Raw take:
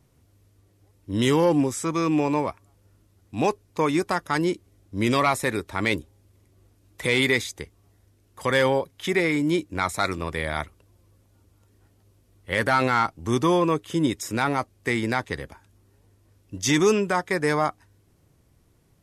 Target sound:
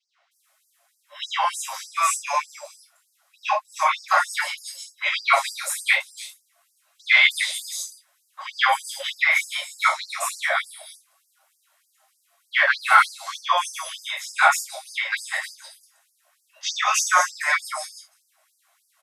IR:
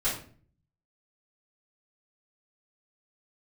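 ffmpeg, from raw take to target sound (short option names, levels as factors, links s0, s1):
-filter_complex "[0:a]acrossover=split=440|4800[s0][s1][s2];[s0]adelay=160[s3];[s2]adelay=310[s4];[s3][s1][s4]amix=inputs=3:normalize=0[s5];[1:a]atrim=start_sample=2205,afade=t=out:st=0.14:d=0.01,atrim=end_sample=6615[s6];[s5][s6]afir=irnorm=-1:irlink=0,afftfilt=real='re*gte(b*sr/1024,540*pow(4600/540,0.5+0.5*sin(2*PI*3.3*pts/sr)))':imag='im*gte(b*sr/1024,540*pow(4600/540,0.5+0.5*sin(2*PI*3.3*pts/sr)))':win_size=1024:overlap=0.75,volume=1.19"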